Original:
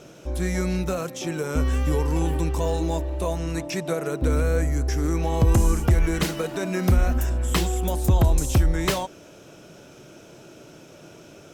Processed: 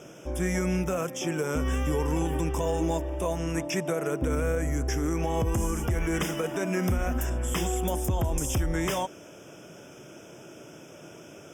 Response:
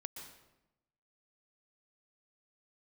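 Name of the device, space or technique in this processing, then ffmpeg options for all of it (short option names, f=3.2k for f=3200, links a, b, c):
PA system with an anti-feedback notch: -af "highpass=f=100:p=1,asuperstop=centerf=4200:order=12:qfactor=3.2,alimiter=limit=-18dB:level=0:latency=1:release=76"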